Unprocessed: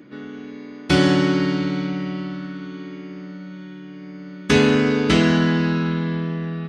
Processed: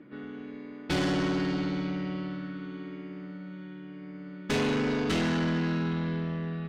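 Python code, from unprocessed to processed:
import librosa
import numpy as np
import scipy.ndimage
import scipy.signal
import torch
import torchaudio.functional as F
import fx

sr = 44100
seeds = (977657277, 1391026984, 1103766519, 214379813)

y = fx.env_lowpass(x, sr, base_hz=2500.0, full_db=-14.5)
y = fx.tube_stage(y, sr, drive_db=19.0, bias=0.3)
y = y * 10.0 ** (-5.0 / 20.0)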